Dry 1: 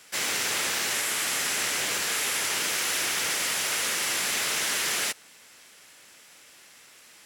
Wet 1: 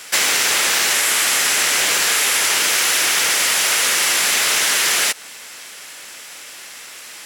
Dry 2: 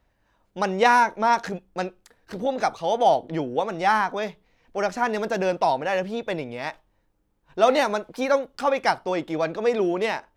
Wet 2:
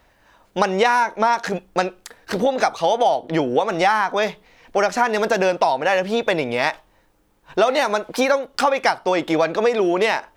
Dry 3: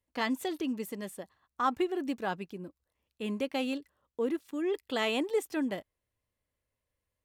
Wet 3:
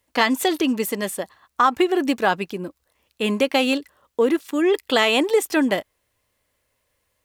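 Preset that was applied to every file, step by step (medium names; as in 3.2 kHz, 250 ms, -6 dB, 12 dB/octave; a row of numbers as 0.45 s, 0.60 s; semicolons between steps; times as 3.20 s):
bass shelf 320 Hz -9 dB; compression 6:1, threshold -30 dBFS; peak normalisation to -3 dBFS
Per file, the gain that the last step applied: +16.5 dB, +15.0 dB, +17.0 dB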